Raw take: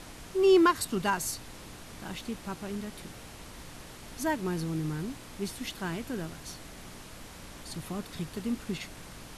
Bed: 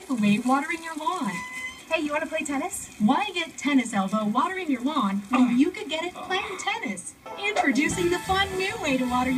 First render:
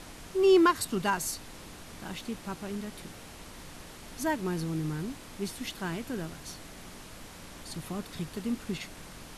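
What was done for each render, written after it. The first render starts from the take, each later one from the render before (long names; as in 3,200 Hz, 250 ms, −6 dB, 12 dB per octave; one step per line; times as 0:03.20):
hum removal 60 Hz, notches 2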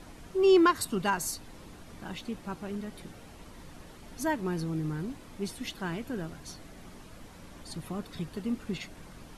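broadband denoise 8 dB, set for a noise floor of −48 dBFS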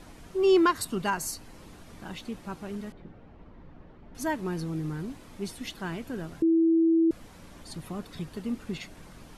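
0:01.05–0:01.62: notch filter 3,600 Hz, Q 10
0:02.92–0:04.15: head-to-tape spacing loss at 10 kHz 45 dB
0:06.42–0:07.11: beep over 328 Hz −18.5 dBFS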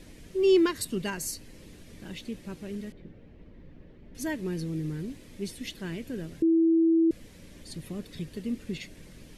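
flat-topped bell 1,000 Hz −11 dB 1.3 octaves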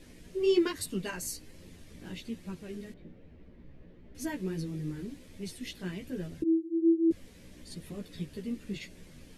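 multi-voice chorus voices 2, 1.2 Hz, delay 14 ms, depth 3 ms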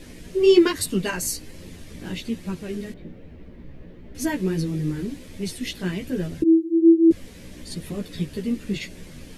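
level +10.5 dB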